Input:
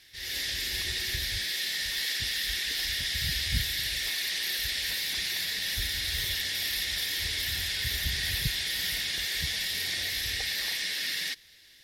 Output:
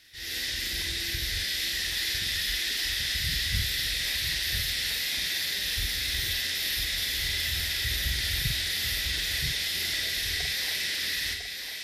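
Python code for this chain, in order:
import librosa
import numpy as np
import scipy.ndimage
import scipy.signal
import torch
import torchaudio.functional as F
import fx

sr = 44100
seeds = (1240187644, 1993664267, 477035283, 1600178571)

y = fx.pitch_keep_formants(x, sr, semitones=-1.5)
y = fx.doubler(y, sr, ms=47.0, db=-5.0)
y = y + 10.0 ** (-6.0 / 20.0) * np.pad(y, (int(1002 * sr / 1000.0), 0))[:len(y)]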